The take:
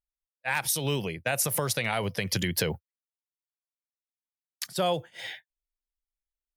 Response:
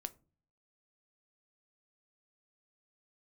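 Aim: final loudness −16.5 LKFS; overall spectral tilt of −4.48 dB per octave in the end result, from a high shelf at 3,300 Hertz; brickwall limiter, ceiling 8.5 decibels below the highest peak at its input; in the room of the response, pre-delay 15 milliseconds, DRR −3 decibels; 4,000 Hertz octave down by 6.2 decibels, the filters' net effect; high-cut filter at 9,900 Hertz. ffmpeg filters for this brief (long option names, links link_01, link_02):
-filter_complex "[0:a]lowpass=9900,highshelf=frequency=3300:gain=-4.5,equalizer=frequency=4000:width_type=o:gain=-5,alimiter=limit=-23dB:level=0:latency=1,asplit=2[link_01][link_02];[1:a]atrim=start_sample=2205,adelay=15[link_03];[link_02][link_03]afir=irnorm=-1:irlink=0,volume=6dB[link_04];[link_01][link_04]amix=inputs=2:normalize=0,volume=13dB"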